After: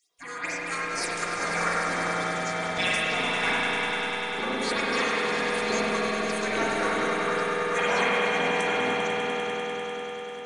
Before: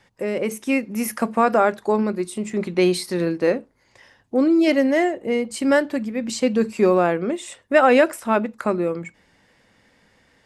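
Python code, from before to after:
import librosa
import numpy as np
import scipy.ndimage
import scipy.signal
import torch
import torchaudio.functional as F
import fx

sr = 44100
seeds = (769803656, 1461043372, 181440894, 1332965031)

p1 = fx.spec_gate(x, sr, threshold_db=-25, keep='weak')
p2 = fx.low_shelf(p1, sr, hz=95.0, db=-9.0)
p3 = fx.notch(p2, sr, hz=1300.0, q=16.0)
p4 = p3 + 0.39 * np.pad(p3, (int(4.3 * sr / 1000.0), 0))[:len(p3)]
p5 = fx.level_steps(p4, sr, step_db=13)
p6 = p4 + (p5 * 10.0 ** (0.5 / 20.0))
p7 = fx.phaser_stages(p6, sr, stages=6, low_hz=190.0, high_hz=4000.0, hz=2.3, feedback_pct=25)
p8 = fx.formant_shift(p7, sr, semitones=-3)
p9 = p8 + fx.echo_swell(p8, sr, ms=99, loudest=5, wet_db=-10.5, dry=0)
p10 = fx.rev_spring(p9, sr, rt60_s=3.8, pass_ms=(35, 47), chirp_ms=55, drr_db=-6.5)
y = p10 * 10.0 ** (4.0 / 20.0)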